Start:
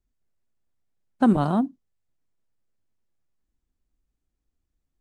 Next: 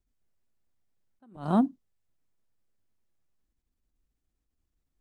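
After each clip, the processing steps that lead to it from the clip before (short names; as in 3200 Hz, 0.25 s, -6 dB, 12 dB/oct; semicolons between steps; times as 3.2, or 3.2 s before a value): attack slew limiter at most 140 dB/s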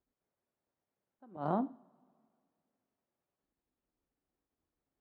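compressor 6:1, threshold -29 dBFS, peak gain reduction 10.5 dB; band-pass 610 Hz, Q 0.71; two-slope reverb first 0.39 s, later 2.2 s, from -22 dB, DRR 11.5 dB; gain +3.5 dB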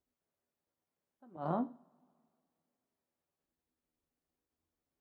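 resonator 81 Hz, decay 0.16 s, harmonics all, mix 80%; gain +3 dB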